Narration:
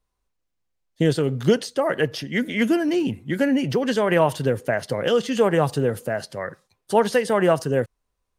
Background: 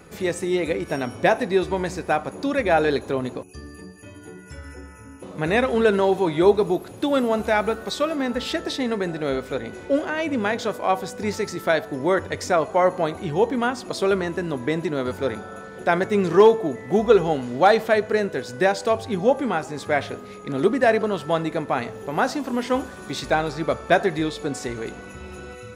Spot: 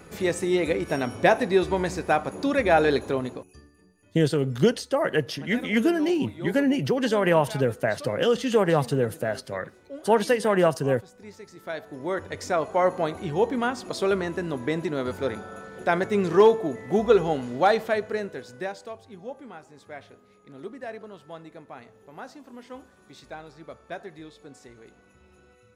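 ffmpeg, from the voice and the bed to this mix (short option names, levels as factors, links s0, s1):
-filter_complex "[0:a]adelay=3150,volume=0.794[s0];[1:a]volume=5.62,afade=t=out:st=3.05:d=0.66:silence=0.125893,afade=t=in:st=11.49:d=1.38:silence=0.16788,afade=t=out:st=17.41:d=1.55:silence=0.158489[s1];[s0][s1]amix=inputs=2:normalize=0"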